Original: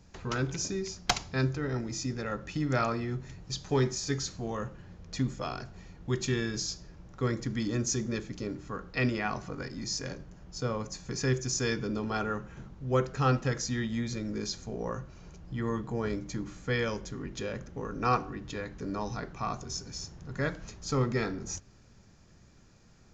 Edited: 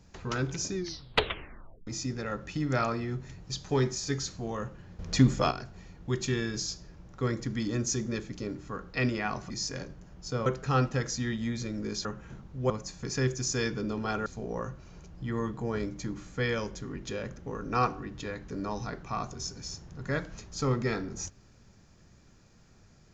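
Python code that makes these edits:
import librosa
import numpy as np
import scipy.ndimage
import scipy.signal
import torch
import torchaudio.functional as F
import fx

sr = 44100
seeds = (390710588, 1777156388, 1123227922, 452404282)

y = fx.edit(x, sr, fx.tape_stop(start_s=0.75, length_s=1.12),
    fx.clip_gain(start_s=4.99, length_s=0.52, db=9.0),
    fx.cut(start_s=9.5, length_s=0.3),
    fx.swap(start_s=10.76, length_s=1.56, other_s=12.97, other_length_s=1.59), tone=tone)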